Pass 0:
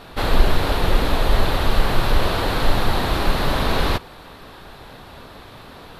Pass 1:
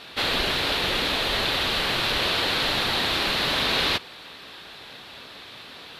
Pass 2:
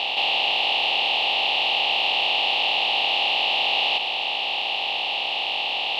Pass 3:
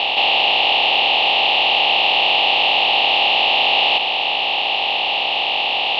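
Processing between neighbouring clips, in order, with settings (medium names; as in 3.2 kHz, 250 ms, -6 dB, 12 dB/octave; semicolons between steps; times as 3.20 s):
frequency weighting D; trim -5.5 dB
spectral levelling over time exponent 0.2; crackle 360 per s -30 dBFS; two resonant band-passes 1.5 kHz, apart 1.8 oct; trim +5 dB
distance through air 140 m; trim +8.5 dB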